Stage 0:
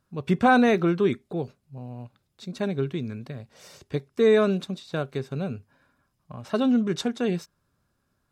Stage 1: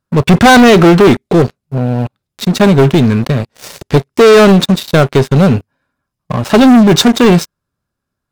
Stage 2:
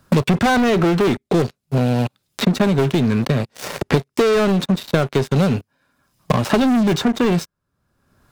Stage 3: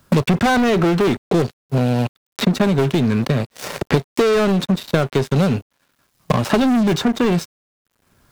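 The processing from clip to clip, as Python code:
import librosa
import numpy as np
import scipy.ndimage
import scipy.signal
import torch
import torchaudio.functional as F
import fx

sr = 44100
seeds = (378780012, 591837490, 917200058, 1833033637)

y1 = fx.leveller(x, sr, passes=5)
y1 = y1 * librosa.db_to_amplitude(6.5)
y2 = fx.band_squash(y1, sr, depth_pct=100)
y2 = y2 * librosa.db_to_amplitude(-10.0)
y3 = fx.quant_dither(y2, sr, seeds[0], bits=10, dither='none')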